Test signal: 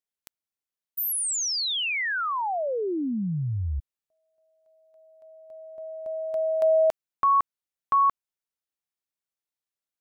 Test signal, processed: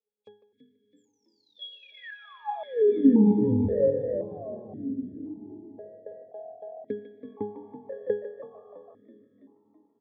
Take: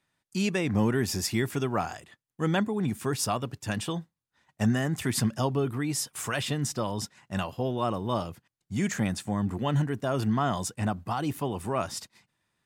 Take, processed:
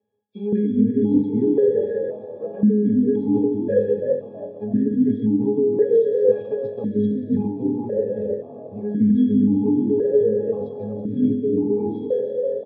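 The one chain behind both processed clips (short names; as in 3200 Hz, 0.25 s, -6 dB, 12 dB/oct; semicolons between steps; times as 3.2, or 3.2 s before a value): nonlinear frequency compression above 2000 Hz 1.5:1; reverse; compressor 10:1, threshold -34 dBFS; reverse; resonant low shelf 640 Hz +11.5 dB, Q 3; notches 50/100/150/200/250/300/350/400 Hz; speakerphone echo 0.15 s, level -8 dB; plate-style reverb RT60 4.1 s, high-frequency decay 0.85×, DRR 6.5 dB; transient shaper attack +5 dB, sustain -11 dB; octave resonator G#, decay 0.37 s; on a send: frequency-shifting echo 0.329 s, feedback 56%, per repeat +42 Hz, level -13 dB; on the sum: maximiser +26.5 dB; vowel sequencer 1.9 Hz; gain +4.5 dB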